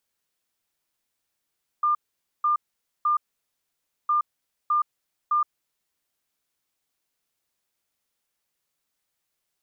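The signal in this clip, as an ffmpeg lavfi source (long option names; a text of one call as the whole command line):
ffmpeg -f lavfi -i "aevalsrc='0.119*sin(2*PI*1200*t)*clip(min(mod(mod(t,2.26),0.61),0.12-mod(mod(t,2.26),0.61))/0.005,0,1)*lt(mod(t,2.26),1.83)':duration=4.52:sample_rate=44100" out.wav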